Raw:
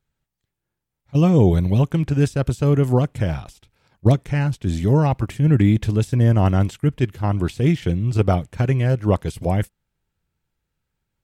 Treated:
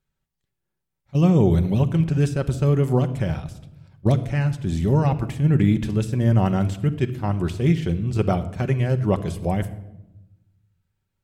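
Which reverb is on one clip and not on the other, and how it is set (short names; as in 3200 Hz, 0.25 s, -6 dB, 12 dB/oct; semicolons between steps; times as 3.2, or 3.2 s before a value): shoebox room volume 3800 m³, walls furnished, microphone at 1.1 m; gain -3 dB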